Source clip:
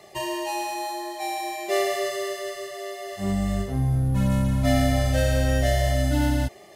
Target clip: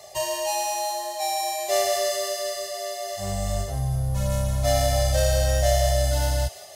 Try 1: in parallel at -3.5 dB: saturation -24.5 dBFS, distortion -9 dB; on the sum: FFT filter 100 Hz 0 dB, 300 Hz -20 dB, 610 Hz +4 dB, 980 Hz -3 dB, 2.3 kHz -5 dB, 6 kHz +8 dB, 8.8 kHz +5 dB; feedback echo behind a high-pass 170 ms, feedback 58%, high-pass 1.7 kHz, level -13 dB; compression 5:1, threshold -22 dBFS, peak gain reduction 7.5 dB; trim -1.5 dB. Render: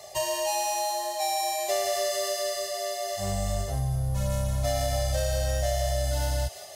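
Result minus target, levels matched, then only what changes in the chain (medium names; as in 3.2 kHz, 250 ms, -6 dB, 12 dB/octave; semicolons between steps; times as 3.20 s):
compression: peak gain reduction +7.5 dB
remove: compression 5:1, threshold -22 dBFS, peak gain reduction 7.5 dB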